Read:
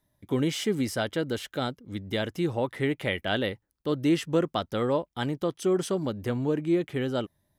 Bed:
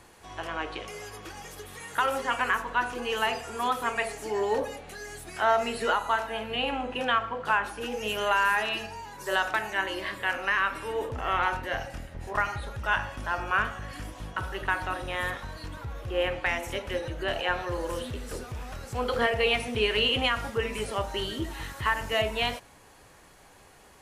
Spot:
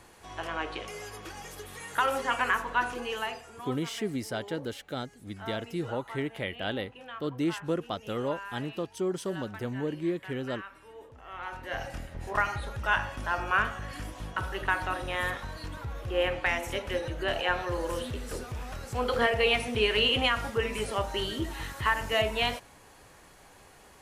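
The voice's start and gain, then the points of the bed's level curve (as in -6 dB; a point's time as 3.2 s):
3.35 s, -5.5 dB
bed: 2.9 s -0.5 dB
3.87 s -17.5 dB
11.28 s -17.5 dB
11.86 s 0 dB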